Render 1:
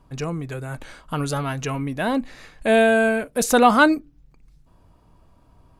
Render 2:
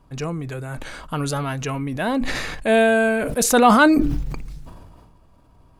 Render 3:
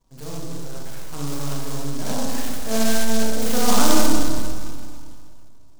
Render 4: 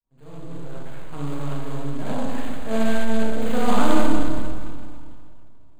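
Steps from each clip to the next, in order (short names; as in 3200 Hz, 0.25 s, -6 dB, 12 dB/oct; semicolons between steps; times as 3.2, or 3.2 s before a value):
sustainer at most 31 dB/s
half-wave gain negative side -12 dB; reverb RT60 2.1 s, pre-delay 28 ms, DRR -7.5 dB; noise-modulated delay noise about 5600 Hz, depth 0.12 ms; gain -9.5 dB
opening faded in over 0.73 s; running mean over 8 samples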